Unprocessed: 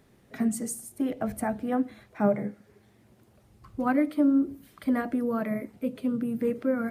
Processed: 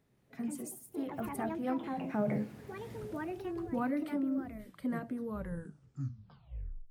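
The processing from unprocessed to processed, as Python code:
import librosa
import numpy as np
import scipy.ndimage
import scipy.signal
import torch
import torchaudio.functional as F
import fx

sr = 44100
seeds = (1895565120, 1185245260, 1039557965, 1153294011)

p1 = fx.tape_stop_end(x, sr, length_s=1.63)
p2 = fx.doppler_pass(p1, sr, speed_mps=9, closest_m=1.6, pass_at_s=2.95)
p3 = fx.peak_eq(p2, sr, hz=130.0, db=6.0, octaves=0.59)
p4 = fx.over_compress(p3, sr, threshold_db=-42.0, ratio=-0.5)
p5 = p3 + F.gain(torch.from_numpy(p4), 1.0).numpy()
p6 = fx.echo_pitch(p5, sr, ms=172, semitones=4, count=2, db_per_echo=-6.0)
y = F.gain(torch.from_numpy(p6), 2.5).numpy()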